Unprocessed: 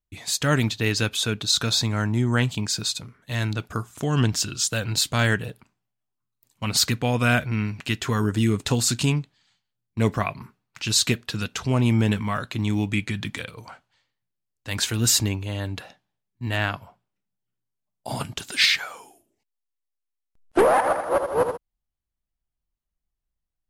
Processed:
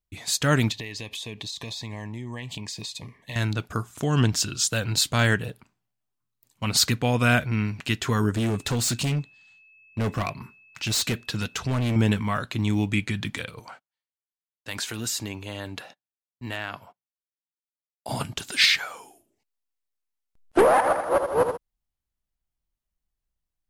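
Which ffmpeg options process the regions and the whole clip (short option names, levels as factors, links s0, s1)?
-filter_complex "[0:a]asettb=1/sr,asplit=3[s0][s1][s2];[s0]atrim=end=0.724[s3];[s1]atrim=start=0.72:end=3.36,asetpts=PTS-STARTPTS,afade=t=in:d=0.004:c=qsin,afade=t=out:st=2.636:d=0.004:c=qsin,asuperstop=centerf=1400:order=8:qfactor=2.5,equalizer=f=1600:t=o:w=2.7:g=7,acompressor=threshold=0.0282:ratio=16:attack=3.2:release=140:knee=1:detection=peak[s4];[s2]atrim=start=3.356[s5];[s3][s4]acrossfade=d=0.004:c1=hsin:c2=qsin[s6];[s6][s5]acrossfade=d=0.004:c1=qsin:c2=hsin,asettb=1/sr,asplit=3[s7][s8][s9];[s7]atrim=end=8.354[s10];[s8]atrim=start=8.35:end=11.96,asetpts=PTS-STARTPTS,afade=t=in:d=0.004:c=qsin,afade=t=out:st=3.606:d=0.004:c=qsin,volume=11.9,asoftclip=hard,volume=0.0841,aeval=exprs='val(0)+0.00224*sin(2*PI*2600*n/s)':c=same[s11];[s9]atrim=start=11.956[s12];[s10][s11]acrossfade=d=0.004:c1=hsin:c2=qsin[s13];[s13][s12]acrossfade=d=0.004:c1=qsin:c2=hsin,asettb=1/sr,asplit=3[s14][s15][s16];[s14]atrim=end=13.594[s17];[s15]atrim=start=13.59:end=18.09,asetpts=PTS-STARTPTS,afade=t=in:d=0.004:c=qsin,afade=t=out:st=4.496:d=0.004:c=qsin,highpass=f=270:p=1,agate=range=0.0562:threshold=0.00224:ratio=16:release=100:detection=peak,acompressor=threshold=0.0398:ratio=3:attack=3.2:release=140:knee=1:detection=peak[s18];[s16]atrim=start=18.086[s19];[s17][s18]acrossfade=d=0.004:c1=hsin:c2=qsin[s20];[s20][s19]acrossfade=d=0.004:c1=qsin:c2=hsin"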